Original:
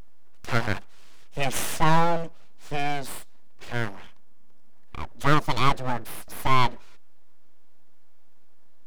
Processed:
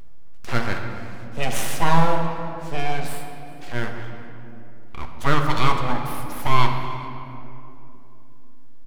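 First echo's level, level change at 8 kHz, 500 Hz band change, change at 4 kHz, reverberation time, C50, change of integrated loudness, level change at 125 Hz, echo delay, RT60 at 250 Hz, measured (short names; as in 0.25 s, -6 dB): -21.0 dB, +1.0 dB, +2.5 dB, +1.5 dB, 2.9 s, 4.5 dB, +1.0 dB, +3.5 dB, 0.409 s, 4.5 s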